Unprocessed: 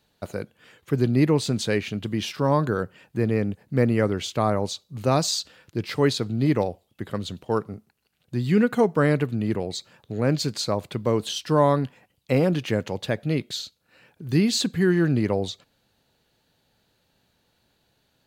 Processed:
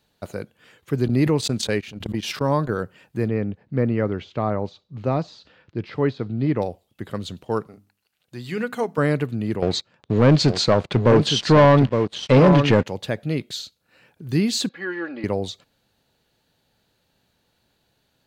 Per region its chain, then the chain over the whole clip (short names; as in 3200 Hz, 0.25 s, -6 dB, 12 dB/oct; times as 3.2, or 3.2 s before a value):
1.08–2.74 gate -26 dBFS, range -32 dB + backwards sustainer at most 54 dB/s
3.28–6.62 de-esser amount 95% + air absorption 210 m
7.67–8.98 low shelf 370 Hz -11.5 dB + notches 50/100/150/200/250/300 Hz
9.62–12.86 echo 0.865 s -9 dB + sample leveller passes 3 + air absorption 120 m
14.69–15.24 HPF 600 Hz + air absorption 290 m + comb 3.6 ms, depth 86%
whole clip: dry